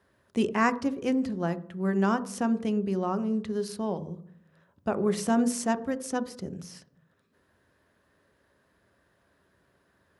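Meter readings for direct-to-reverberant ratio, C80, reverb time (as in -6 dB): 11.0 dB, 19.0 dB, 0.60 s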